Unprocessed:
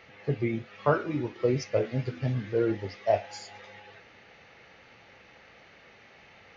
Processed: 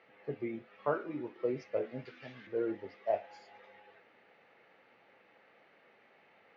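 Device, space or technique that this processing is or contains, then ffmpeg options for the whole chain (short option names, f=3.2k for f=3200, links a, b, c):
phone in a pocket: -filter_complex "[0:a]highpass=250,asettb=1/sr,asplit=3[a][b][c];[a]atrim=end=2.054[d];[b]atrim=start=2.05:end=2.47,asetpts=PTS-STARTPTS,afade=t=in:d=0.004:c=qsin,afade=t=out:st=0.416:d=0.004:c=qsin,tiltshelf=f=1.1k:g=-10[e];[c]atrim=start=2.466[f];[d][e]acrossfade=d=0.004:c1=hsin:c2=qsin[g];[g][f]acrossfade=d=0.004:c1=qsin:c2=hsin,lowpass=3.9k,highshelf=f=2.3k:g=-9,volume=-6.5dB"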